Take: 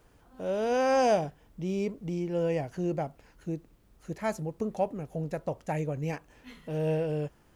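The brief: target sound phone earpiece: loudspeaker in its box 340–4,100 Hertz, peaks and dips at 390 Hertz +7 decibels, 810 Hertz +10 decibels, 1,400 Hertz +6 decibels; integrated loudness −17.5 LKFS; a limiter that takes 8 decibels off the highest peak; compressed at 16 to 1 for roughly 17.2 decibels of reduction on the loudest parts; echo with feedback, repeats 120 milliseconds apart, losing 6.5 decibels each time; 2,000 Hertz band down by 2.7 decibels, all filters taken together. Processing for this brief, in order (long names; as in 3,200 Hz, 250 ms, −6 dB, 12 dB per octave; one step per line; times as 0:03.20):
parametric band 2,000 Hz −8 dB
downward compressor 16 to 1, threshold −39 dBFS
brickwall limiter −37.5 dBFS
loudspeaker in its box 340–4,100 Hz, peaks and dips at 390 Hz +7 dB, 810 Hz +10 dB, 1,400 Hz +6 dB
repeating echo 120 ms, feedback 47%, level −6.5 dB
level +27 dB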